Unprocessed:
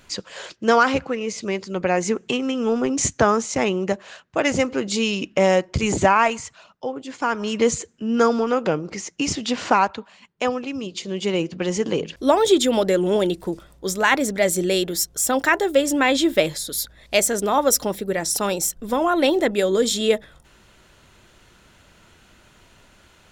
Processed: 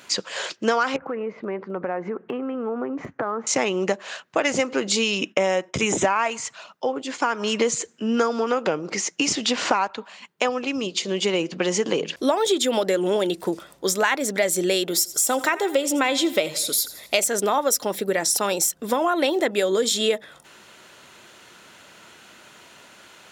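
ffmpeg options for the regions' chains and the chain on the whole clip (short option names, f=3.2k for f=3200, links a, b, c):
-filter_complex "[0:a]asettb=1/sr,asplit=3[a][b][c];[a]atrim=end=0.964[d];[b]atrim=start=0.96:end=3.47,asetpts=PTS-STARTPTS,afade=t=in:d=0.004:c=qsin,afade=t=out:st=2.506:d=0.004:c=qsin,lowpass=f=1.5k:w=0.5412,lowpass=f=1.5k:w=1.3066,acompressor=threshold=-27dB:ratio=6:attack=3.2:release=140:knee=1:detection=peak,aemphasis=mode=production:type=75fm[e];[c]atrim=start=3.466[f];[d][e]acrossfade=d=0.004:c1=hsin:c2=qsin[g];[g][f]acrossfade=d=0.004:c1=qsin:c2=hsin,asettb=1/sr,asplit=3[h][i][j];[h]atrim=end=5.184[k];[i]atrim=start=5.18:end=6.04,asetpts=PTS-STARTPTS,afade=t=in:d=0.004:c=qsin,afade=t=out:st=0.856:d=0.004:c=qsin,agate=range=-33dB:threshold=-43dB:ratio=3:release=100:detection=peak,asuperstop=centerf=4500:order=4:qfactor=4.8[l];[j]atrim=start=6.036[m];[k][l]acrossfade=d=0.004:c1=hsin:c2=qsin[n];[n][m]acrossfade=d=0.004:c1=qsin:c2=hsin,asettb=1/sr,asplit=3[o][p][q];[o]atrim=end=14.854[r];[p]atrim=start=14.85:end=17.24,asetpts=PTS-STARTPTS,afade=t=in:d=0.004:c=qsin,afade=t=out:st=2.386:d=0.004:c=qsin,bandreject=f=1.7k:w=7.2,aecho=1:1:83|166|249|332:0.126|0.0579|0.0266|0.0123,atrim=end_sample=105399[s];[q]atrim=start=17.236[t];[r][s]acrossfade=d=0.004:c1=hsin:c2=qsin[u];[u][t]acrossfade=d=0.004:c1=qsin:c2=hsin,highpass=140,lowshelf=f=250:g=-10,acompressor=threshold=-26dB:ratio=4,volume=7dB"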